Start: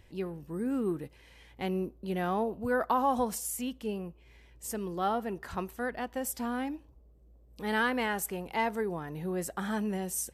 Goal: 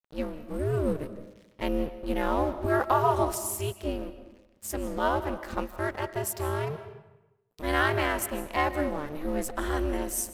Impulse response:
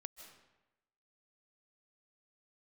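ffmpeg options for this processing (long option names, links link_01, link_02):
-filter_complex "[0:a]adynamicequalizer=threshold=0.00224:dfrequency=100:dqfactor=1.2:tfrequency=100:tqfactor=1.2:attack=5:release=100:ratio=0.375:range=2:mode=boostabove:tftype=bell,aeval=exprs='val(0)*sin(2*PI*150*n/s)':channel_layout=same,aeval=exprs='sgn(val(0))*max(abs(val(0))-0.00237,0)':channel_layout=same,asplit=2[link_01][link_02];[1:a]atrim=start_sample=2205[link_03];[link_02][link_03]afir=irnorm=-1:irlink=0,volume=7.5dB[link_04];[link_01][link_04]amix=inputs=2:normalize=0"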